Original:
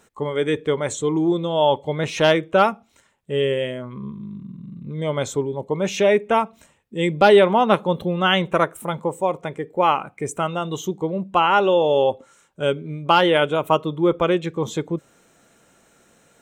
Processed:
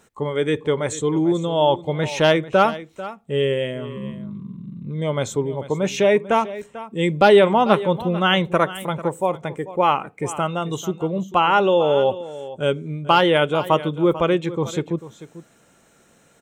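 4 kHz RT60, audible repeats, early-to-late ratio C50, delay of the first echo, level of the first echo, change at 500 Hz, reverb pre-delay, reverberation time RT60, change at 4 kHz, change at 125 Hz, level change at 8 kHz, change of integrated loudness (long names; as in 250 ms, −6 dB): no reverb audible, 1, no reverb audible, 443 ms, −15.5 dB, +0.5 dB, no reverb audible, no reverb audible, 0.0 dB, +2.0 dB, 0.0 dB, +0.5 dB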